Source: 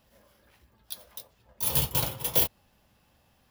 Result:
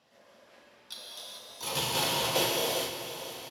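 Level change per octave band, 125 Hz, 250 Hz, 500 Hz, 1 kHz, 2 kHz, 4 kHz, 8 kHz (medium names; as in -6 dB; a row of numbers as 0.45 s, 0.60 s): -6.5 dB, +2.5 dB, +6.0 dB, +6.5 dB, +7.0 dB, +6.0 dB, -0.5 dB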